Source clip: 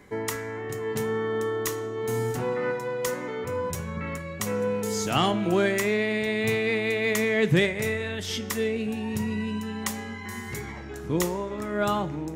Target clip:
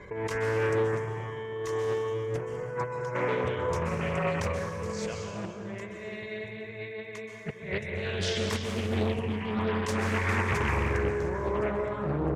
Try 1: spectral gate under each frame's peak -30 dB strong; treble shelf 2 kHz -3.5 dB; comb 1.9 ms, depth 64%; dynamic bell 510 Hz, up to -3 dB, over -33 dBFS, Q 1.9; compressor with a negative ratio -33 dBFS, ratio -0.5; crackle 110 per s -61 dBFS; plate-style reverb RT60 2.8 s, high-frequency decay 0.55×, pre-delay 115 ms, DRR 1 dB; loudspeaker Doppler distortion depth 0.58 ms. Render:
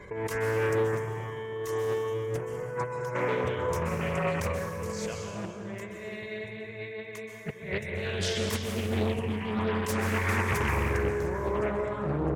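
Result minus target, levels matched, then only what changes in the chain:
8 kHz band +2.5 dB
add after dynamic bell: low-pass 6.5 kHz 12 dB/octave

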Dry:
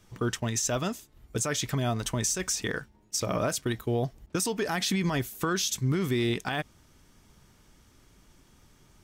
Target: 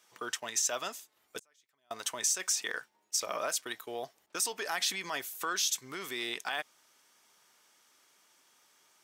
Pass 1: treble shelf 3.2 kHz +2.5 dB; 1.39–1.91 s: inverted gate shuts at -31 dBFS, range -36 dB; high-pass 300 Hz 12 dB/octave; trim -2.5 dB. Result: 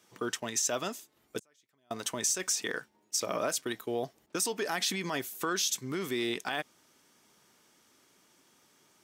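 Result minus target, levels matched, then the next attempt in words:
250 Hz band +10.0 dB
treble shelf 3.2 kHz +2.5 dB; 1.39–1.91 s: inverted gate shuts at -31 dBFS, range -36 dB; high-pass 670 Hz 12 dB/octave; trim -2.5 dB

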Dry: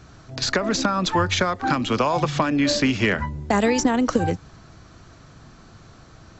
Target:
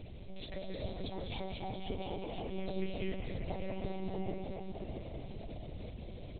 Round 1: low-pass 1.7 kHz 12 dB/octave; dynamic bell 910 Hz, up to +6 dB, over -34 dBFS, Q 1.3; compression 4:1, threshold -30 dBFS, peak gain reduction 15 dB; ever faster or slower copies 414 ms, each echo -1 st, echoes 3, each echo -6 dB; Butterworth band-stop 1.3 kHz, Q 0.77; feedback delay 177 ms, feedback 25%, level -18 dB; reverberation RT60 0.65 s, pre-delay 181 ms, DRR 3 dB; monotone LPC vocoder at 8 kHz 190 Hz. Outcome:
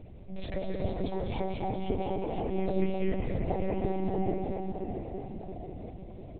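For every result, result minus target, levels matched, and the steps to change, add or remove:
compression: peak gain reduction -8 dB; 2 kHz band -5.0 dB
change: compression 4:1, threshold -40.5 dBFS, peak gain reduction 23 dB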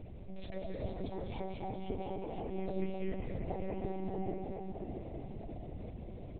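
2 kHz band -5.0 dB
remove: low-pass 1.7 kHz 12 dB/octave

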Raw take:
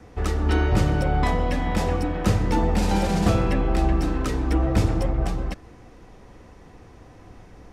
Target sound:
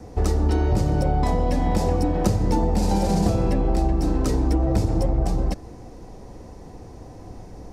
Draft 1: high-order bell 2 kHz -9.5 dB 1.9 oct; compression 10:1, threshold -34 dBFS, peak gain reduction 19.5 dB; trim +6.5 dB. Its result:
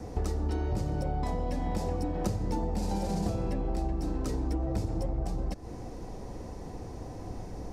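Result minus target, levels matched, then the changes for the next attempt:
compression: peak gain reduction +10.5 dB
change: compression 10:1, threshold -22.5 dBFS, peak gain reduction 9 dB

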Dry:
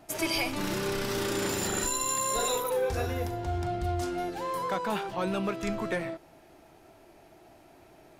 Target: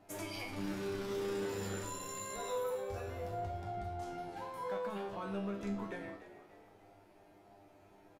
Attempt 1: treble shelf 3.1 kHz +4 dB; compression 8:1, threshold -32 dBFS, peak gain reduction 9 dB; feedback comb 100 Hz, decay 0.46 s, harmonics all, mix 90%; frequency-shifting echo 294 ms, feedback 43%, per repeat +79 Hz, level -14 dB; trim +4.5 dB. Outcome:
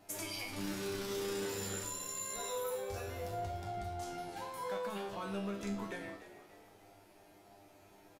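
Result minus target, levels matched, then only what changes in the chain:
8 kHz band +5.5 dB
change: treble shelf 3.1 kHz -7.5 dB

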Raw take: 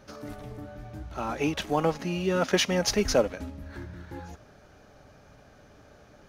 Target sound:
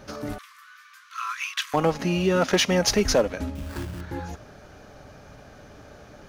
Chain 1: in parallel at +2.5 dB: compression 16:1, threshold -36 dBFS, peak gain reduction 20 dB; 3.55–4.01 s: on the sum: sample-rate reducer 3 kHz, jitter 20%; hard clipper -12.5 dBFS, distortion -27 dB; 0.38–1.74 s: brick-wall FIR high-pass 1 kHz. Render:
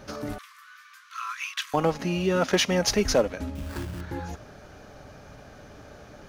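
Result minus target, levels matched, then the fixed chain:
compression: peak gain reduction +8 dB
in parallel at +2.5 dB: compression 16:1, threshold -27.5 dBFS, peak gain reduction 12 dB; 3.55–4.01 s: on the sum: sample-rate reducer 3 kHz, jitter 20%; hard clipper -12.5 dBFS, distortion -21 dB; 0.38–1.74 s: brick-wall FIR high-pass 1 kHz

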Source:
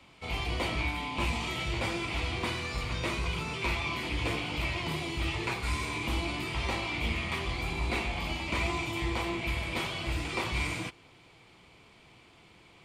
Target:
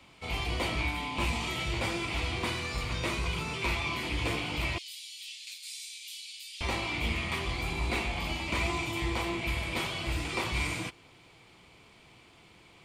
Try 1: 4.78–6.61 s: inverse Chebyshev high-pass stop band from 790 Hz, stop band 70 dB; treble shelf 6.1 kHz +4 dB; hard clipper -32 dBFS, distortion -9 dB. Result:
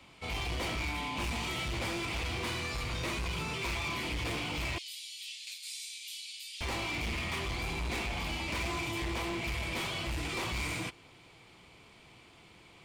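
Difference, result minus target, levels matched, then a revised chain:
hard clipper: distortion +31 dB
4.78–6.61 s: inverse Chebyshev high-pass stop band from 790 Hz, stop band 70 dB; treble shelf 6.1 kHz +4 dB; hard clipper -21.5 dBFS, distortion -40 dB

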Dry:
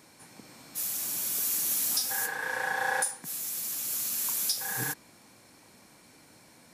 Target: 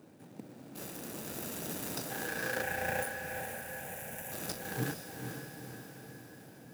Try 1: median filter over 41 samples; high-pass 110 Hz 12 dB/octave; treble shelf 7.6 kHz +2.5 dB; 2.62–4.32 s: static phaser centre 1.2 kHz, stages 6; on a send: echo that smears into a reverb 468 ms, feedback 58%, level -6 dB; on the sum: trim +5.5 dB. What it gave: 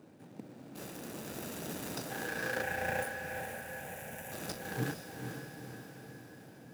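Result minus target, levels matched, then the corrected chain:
8 kHz band -2.5 dB
median filter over 41 samples; high-pass 110 Hz 12 dB/octave; treble shelf 7.6 kHz +9.5 dB; 2.62–4.32 s: static phaser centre 1.2 kHz, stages 6; on a send: echo that smears into a reverb 468 ms, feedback 58%, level -6 dB; on the sum: trim +5.5 dB

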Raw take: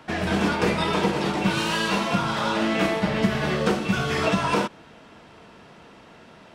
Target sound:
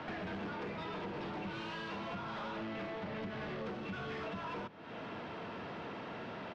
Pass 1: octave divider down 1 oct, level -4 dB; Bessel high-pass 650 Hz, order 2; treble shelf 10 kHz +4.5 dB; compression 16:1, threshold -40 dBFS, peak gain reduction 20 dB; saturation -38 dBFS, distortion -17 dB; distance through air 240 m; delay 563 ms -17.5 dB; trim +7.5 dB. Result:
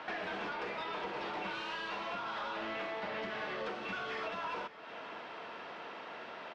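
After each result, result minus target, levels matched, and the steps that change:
250 Hz band -7.5 dB; echo-to-direct +10.5 dB; saturation: distortion -6 dB
change: Bessel high-pass 180 Hz, order 2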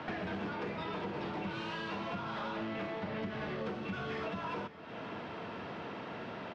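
echo-to-direct +10.5 dB; saturation: distortion -6 dB
change: delay 563 ms -28 dB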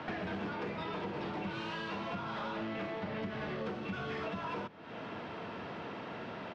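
saturation: distortion -6 dB
change: saturation -44 dBFS, distortion -10 dB

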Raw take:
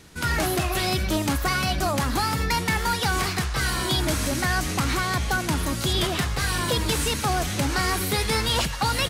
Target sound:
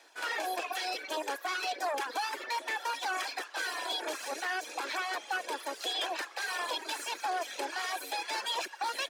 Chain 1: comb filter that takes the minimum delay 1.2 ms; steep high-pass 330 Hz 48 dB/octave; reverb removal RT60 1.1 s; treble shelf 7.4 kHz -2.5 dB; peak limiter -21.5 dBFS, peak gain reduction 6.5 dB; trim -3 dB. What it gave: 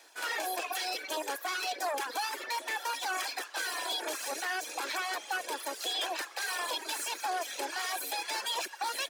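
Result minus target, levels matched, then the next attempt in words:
8 kHz band +4.0 dB
comb filter that takes the minimum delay 1.2 ms; steep high-pass 330 Hz 48 dB/octave; reverb removal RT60 1.1 s; treble shelf 7.4 kHz -13 dB; peak limiter -21.5 dBFS, peak gain reduction 5.5 dB; trim -3 dB

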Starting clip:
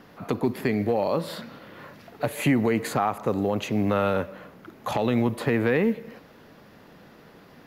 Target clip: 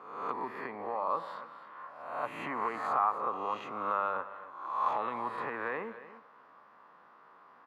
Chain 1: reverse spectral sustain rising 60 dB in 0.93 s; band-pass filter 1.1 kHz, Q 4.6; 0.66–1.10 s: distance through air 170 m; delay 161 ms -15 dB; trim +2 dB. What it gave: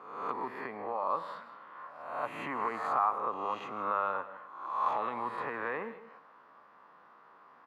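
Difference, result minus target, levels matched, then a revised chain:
echo 121 ms early
reverse spectral sustain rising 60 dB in 0.93 s; band-pass filter 1.1 kHz, Q 4.6; 0.66–1.10 s: distance through air 170 m; delay 282 ms -15 dB; trim +2 dB

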